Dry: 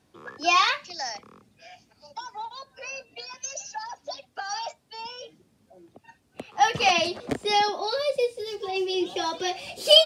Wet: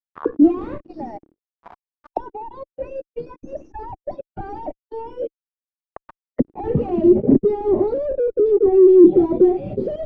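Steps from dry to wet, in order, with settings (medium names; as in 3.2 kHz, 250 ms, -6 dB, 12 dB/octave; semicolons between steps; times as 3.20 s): 0.85–2.19 s: high-pass 220 Hz -> 500 Hz 12 dB/octave; in parallel at -1.5 dB: compression 4:1, threshold -32 dBFS, peak gain reduction 18 dB; on the sum: fuzz box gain 40 dB, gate -36 dBFS; spectral noise reduction 17 dB; waveshaping leveller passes 3; touch-sensitive low-pass 320–1300 Hz down, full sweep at -20.5 dBFS; trim -4 dB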